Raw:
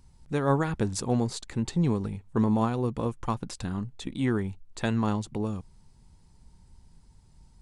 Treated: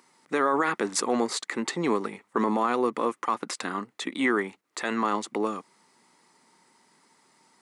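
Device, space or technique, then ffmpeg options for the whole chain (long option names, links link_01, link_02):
laptop speaker: -af "highpass=frequency=280:width=0.5412,highpass=frequency=280:width=1.3066,equalizer=frequency=1200:width_type=o:width=0.43:gain=9,equalizer=frequency=2000:width_type=o:width=0.4:gain=10,alimiter=limit=-20dB:level=0:latency=1:release=31,volume=6dB"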